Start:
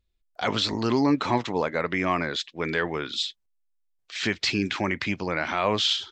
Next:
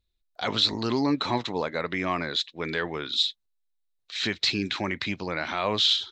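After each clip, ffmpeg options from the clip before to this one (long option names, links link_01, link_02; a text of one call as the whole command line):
ffmpeg -i in.wav -af "equalizer=frequency=3900:width_type=o:width=0.29:gain=10.5,volume=-3dB" out.wav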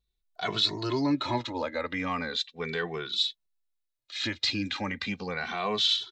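ffmpeg -i in.wav -filter_complex "[0:a]asplit=2[link_01][link_02];[link_02]adelay=2.2,afreqshift=-0.36[link_03];[link_01][link_03]amix=inputs=2:normalize=1" out.wav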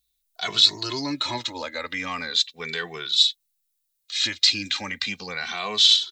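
ffmpeg -i in.wav -af "crystalizer=i=8:c=0,volume=-4dB" out.wav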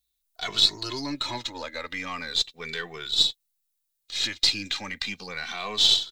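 ffmpeg -i in.wav -af "aeval=exprs='if(lt(val(0),0),0.708*val(0),val(0))':channel_layout=same,volume=-2dB" out.wav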